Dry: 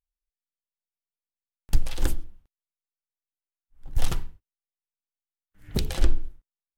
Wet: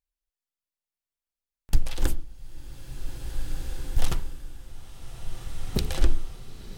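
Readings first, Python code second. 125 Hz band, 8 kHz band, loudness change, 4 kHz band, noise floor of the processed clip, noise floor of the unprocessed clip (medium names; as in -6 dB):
+0.5 dB, +1.0 dB, -2.0 dB, +0.5 dB, under -85 dBFS, under -85 dBFS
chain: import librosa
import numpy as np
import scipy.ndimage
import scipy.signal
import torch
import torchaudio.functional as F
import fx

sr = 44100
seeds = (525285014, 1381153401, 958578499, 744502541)

y = fx.rev_bloom(x, sr, seeds[0], attack_ms=1840, drr_db=4.0)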